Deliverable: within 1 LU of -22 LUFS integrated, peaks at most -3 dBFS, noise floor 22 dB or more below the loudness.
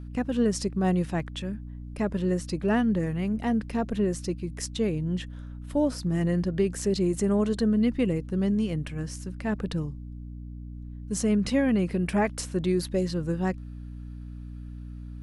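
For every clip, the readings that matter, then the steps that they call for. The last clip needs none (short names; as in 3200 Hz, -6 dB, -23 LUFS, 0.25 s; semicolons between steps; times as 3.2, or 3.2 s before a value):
hum 60 Hz; harmonics up to 300 Hz; hum level -36 dBFS; loudness -27.5 LUFS; peak -12.5 dBFS; loudness target -22.0 LUFS
-> notches 60/120/180/240/300 Hz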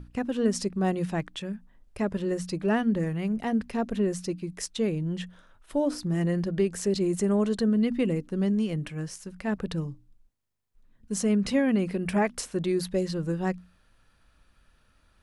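hum none; loudness -28.0 LUFS; peak -13.0 dBFS; loudness target -22.0 LUFS
-> gain +6 dB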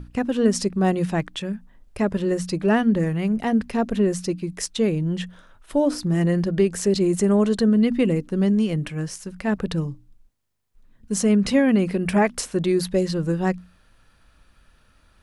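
loudness -22.0 LUFS; peak -7.0 dBFS; noise floor -58 dBFS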